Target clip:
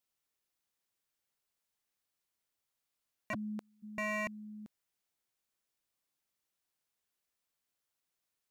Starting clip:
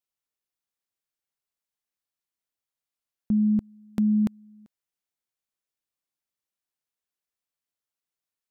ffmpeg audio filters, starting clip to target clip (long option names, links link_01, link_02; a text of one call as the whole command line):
ffmpeg -i in.wav -filter_complex "[0:a]asplit=3[link_01][link_02][link_03];[link_01]afade=type=out:start_time=3.33:duration=0.02[link_04];[link_02]highpass=750,afade=type=in:start_time=3.33:duration=0.02,afade=type=out:start_time=3.82:duration=0.02[link_05];[link_03]afade=type=in:start_time=3.82:duration=0.02[link_06];[link_04][link_05][link_06]amix=inputs=3:normalize=0,aeval=exprs='0.0178*(abs(mod(val(0)/0.0178+3,4)-2)-1)':channel_layout=same,volume=3.5dB" out.wav